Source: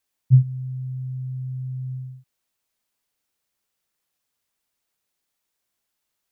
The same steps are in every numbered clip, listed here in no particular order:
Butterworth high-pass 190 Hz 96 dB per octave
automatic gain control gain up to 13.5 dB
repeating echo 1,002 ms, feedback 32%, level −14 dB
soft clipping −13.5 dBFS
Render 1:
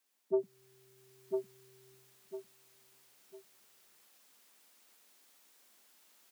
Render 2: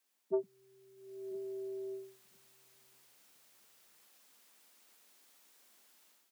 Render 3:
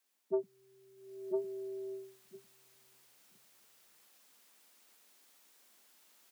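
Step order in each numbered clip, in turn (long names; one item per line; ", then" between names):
soft clipping, then repeating echo, then automatic gain control, then Butterworth high-pass
automatic gain control, then repeating echo, then soft clipping, then Butterworth high-pass
repeating echo, then automatic gain control, then soft clipping, then Butterworth high-pass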